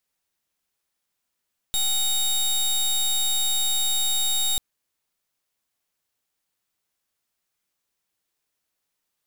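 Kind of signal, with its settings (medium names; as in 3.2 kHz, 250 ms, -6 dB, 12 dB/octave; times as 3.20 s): pulse 3.74 kHz, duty 21% -22.5 dBFS 2.84 s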